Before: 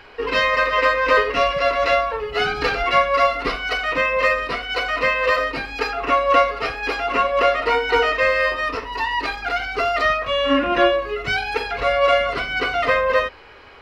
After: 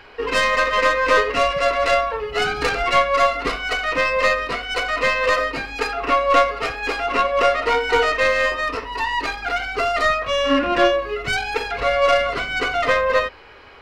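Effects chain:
stylus tracing distortion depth 0.058 ms

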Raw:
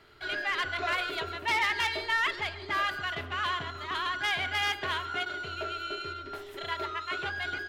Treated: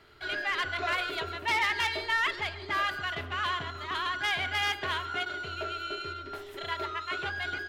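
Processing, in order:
parametric band 74 Hz +3 dB 0.41 octaves

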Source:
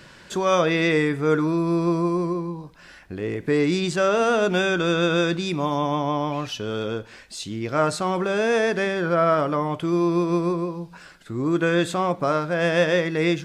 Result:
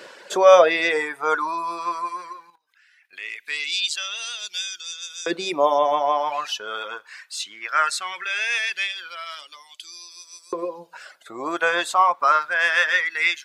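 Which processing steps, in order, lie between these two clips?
reverb reduction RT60 1.3 s
0:02.50–0:03.13: output level in coarse steps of 22 dB
auto-filter high-pass saw up 0.19 Hz 450–6,500 Hz
level +4 dB

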